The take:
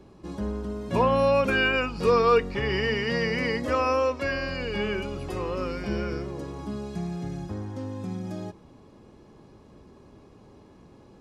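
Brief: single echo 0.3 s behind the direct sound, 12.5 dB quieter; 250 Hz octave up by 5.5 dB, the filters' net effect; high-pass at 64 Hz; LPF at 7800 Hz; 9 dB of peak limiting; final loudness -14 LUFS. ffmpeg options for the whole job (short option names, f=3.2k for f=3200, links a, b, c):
-af "highpass=64,lowpass=7.8k,equalizer=f=250:t=o:g=7,alimiter=limit=-17dB:level=0:latency=1,aecho=1:1:300:0.237,volume=13.5dB"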